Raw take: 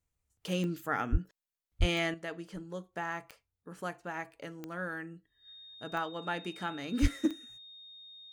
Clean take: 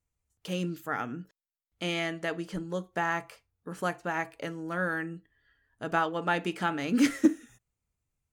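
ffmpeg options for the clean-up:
-filter_complex "[0:a]adeclick=t=4,bandreject=f=3.7k:w=30,asplit=3[a][b][c];[a]afade=t=out:st=1.11:d=0.02[d];[b]highpass=f=140:w=0.5412,highpass=f=140:w=1.3066,afade=t=in:st=1.11:d=0.02,afade=t=out:st=1.23:d=0.02[e];[c]afade=t=in:st=1.23:d=0.02[f];[d][e][f]amix=inputs=3:normalize=0,asplit=3[g][h][i];[g]afade=t=out:st=1.79:d=0.02[j];[h]highpass=f=140:w=0.5412,highpass=f=140:w=1.3066,afade=t=in:st=1.79:d=0.02,afade=t=out:st=1.91:d=0.02[k];[i]afade=t=in:st=1.91:d=0.02[l];[j][k][l]amix=inputs=3:normalize=0,asplit=3[m][n][o];[m]afade=t=out:st=7.01:d=0.02[p];[n]highpass=f=140:w=0.5412,highpass=f=140:w=1.3066,afade=t=in:st=7.01:d=0.02,afade=t=out:st=7.13:d=0.02[q];[o]afade=t=in:st=7.13:d=0.02[r];[p][q][r]amix=inputs=3:normalize=0,asetnsamples=n=441:p=0,asendcmd='2.14 volume volume 7.5dB',volume=0dB"

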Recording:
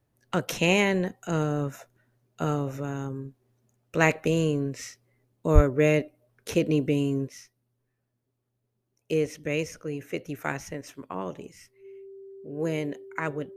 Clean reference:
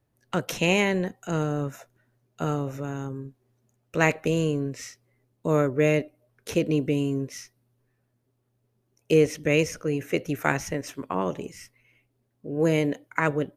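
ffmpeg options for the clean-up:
-filter_complex "[0:a]bandreject=f=390:w=30,asplit=3[a][b][c];[a]afade=t=out:st=5.54:d=0.02[d];[b]highpass=f=140:w=0.5412,highpass=f=140:w=1.3066,afade=t=in:st=5.54:d=0.02,afade=t=out:st=5.66:d=0.02[e];[c]afade=t=in:st=5.66:d=0.02[f];[d][e][f]amix=inputs=3:normalize=0,asetnsamples=n=441:p=0,asendcmd='7.28 volume volume 6.5dB',volume=0dB"

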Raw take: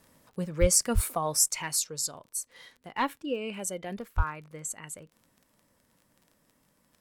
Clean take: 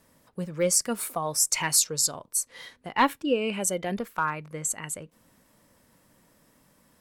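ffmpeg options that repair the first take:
-filter_complex "[0:a]adeclick=t=4,asplit=3[a][b][c];[a]afade=t=out:st=0.6:d=0.02[d];[b]highpass=f=140:w=0.5412,highpass=f=140:w=1.3066,afade=t=in:st=0.6:d=0.02,afade=t=out:st=0.72:d=0.02[e];[c]afade=t=in:st=0.72:d=0.02[f];[d][e][f]amix=inputs=3:normalize=0,asplit=3[g][h][i];[g]afade=t=out:st=0.94:d=0.02[j];[h]highpass=f=140:w=0.5412,highpass=f=140:w=1.3066,afade=t=in:st=0.94:d=0.02,afade=t=out:st=1.06:d=0.02[k];[i]afade=t=in:st=1.06:d=0.02[l];[j][k][l]amix=inputs=3:normalize=0,asplit=3[m][n][o];[m]afade=t=out:st=4.16:d=0.02[p];[n]highpass=f=140:w=0.5412,highpass=f=140:w=1.3066,afade=t=in:st=4.16:d=0.02,afade=t=out:st=4.28:d=0.02[q];[o]afade=t=in:st=4.28:d=0.02[r];[p][q][r]amix=inputs=3:normalize=0,asetnsamples=n=441:p=0,asendcmd='1.48 volume volume 7dB',volume=0dB"

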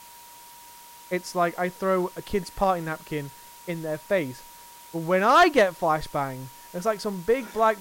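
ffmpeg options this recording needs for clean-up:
-af "bandreject=f=950:w=30,afftdn=nr=22:nf=-47"

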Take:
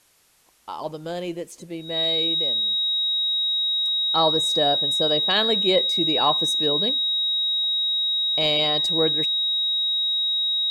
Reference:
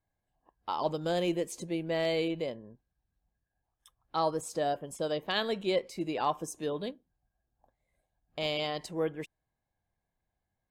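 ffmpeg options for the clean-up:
-af "bandreject=f=3.8k:w=30,agate=range=-21dB:threshold=-29dB,asetnsamples=n=441:p=0,asendcmd='3.12 volume volume -8dB',volume=0dB"

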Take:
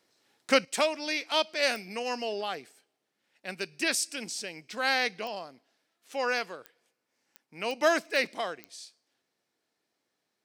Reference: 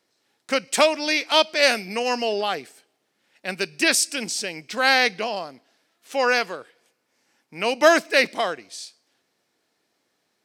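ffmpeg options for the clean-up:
-af "adeclick=t=4,asetnsamples=n=441:p=0,asendcmd='0.65 volume volume 9dB',volume=0dB"

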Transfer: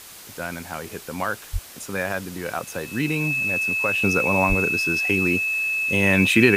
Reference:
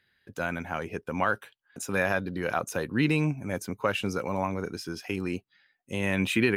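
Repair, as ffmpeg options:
-filter_complex "[0:a]bandreject=f=2.6k:w=30,asplit=3[a][b][c];[a]afade=t=out:st=1.52:d=0.02[d];[b]highpass=f=140:w=0.5412,highpass=f=140:w=1.3066,afade=t=in:st=1.52:d=0.02,afade=t=out:st=1.64:d=0.02[e];[c]afade=t=in:st=1.64:d=0.02[f];[d][e][f]amix=inputs=3:normalize=0,asplit=3[g][h][i];[g]afade=t=out:st=4.48:d=0.02[j];[h]highpass=f=140:w=0.5412,highpass=f=140:w=1.3066,afade=t=in:st=4.48:d=0.02,afade=t=out:st=4.6:d=0.02[k];[i]afade=t=in:st=4.6:d=0.02[l];[j][k][l]amix=inputs=3:normalize=0,afwtdn=0.0089,asetnsamples=n=441:p=0,asendcmd='4.02 volume volume -8dB',volume=0dB"

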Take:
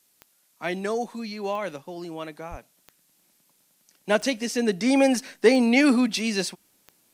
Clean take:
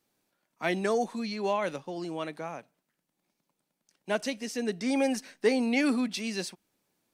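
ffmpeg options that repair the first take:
-filter_complex "[0:a]adeclick=t=4,asplit=3[a][b][c];[a]afade=t=out:st=2.5:d=0.02[d];[b]highpass=f=140:w=0.5412,highpass=f=140:w=1.3066,afade=t=in:st=2.5:d=0.02,afade=t=out:st=2.62:d=0.02[e];[c]afade=t=in:st=2.62:d=0.02[f];[d][e][f]amix=inputs=3:normalize=0,agate=range=-21dB:threshold=-57dB,asetnsamples=n=441:p=0,asendcmd='2.77 volume volume -7.5dB',volume=0dB"

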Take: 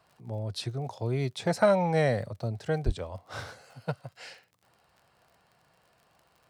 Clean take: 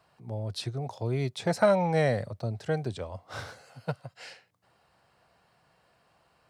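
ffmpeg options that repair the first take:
-filter_complex "[0:a]adeclick=t=4,asplit=3[a][b][c];[a]afade=t=out:st=2.85:d=0.02[d];[b]highpass=f=140:w=0.5412,highpass=f=140:w=1.3066,afade=t=in:st=2.85:d=0.02,afade=t=out:st=2.97:d=0.02[e];[c]afade=t=in:st=2.97:d=0.02[f];[d][e][f]amix=inputs=3:normalize=0"

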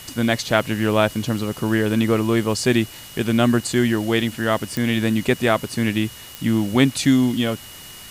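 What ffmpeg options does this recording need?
-af "adeclick=t=4,bandreject=f=2.9k:w=30,afwtdn=0.01"

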